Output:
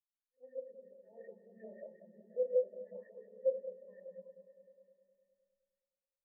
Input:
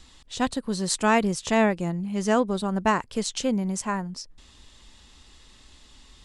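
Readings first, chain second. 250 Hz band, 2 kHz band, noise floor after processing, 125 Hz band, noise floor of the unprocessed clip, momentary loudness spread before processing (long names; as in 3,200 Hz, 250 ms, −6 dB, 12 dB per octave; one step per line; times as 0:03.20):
−37.0 dB, below −35 dB, below −85 dBFS, below −35 dB, −54 dBFS, 9 LU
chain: hum removal 247.6 Hz, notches 3
reversed playback
downward compressor 4 to 1, threshold −33 dBFS, peak gain reduction 14.5 dB
reversed playback
formant resonators in series e
echo ahead of the sound 98 ms −15 dB
four-comb reverb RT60 2.7 s, combs from 28 ms, DRR −5 dB
auto-filter low-pass saw up 5.5 Hz 570–2,300 Hz
on a send: echo that builds up and dies away 103 ms, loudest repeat 5, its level −13 dB
on the sum: every bin expanded away from the loudest bin 2.5 to 1
level +1.5 dB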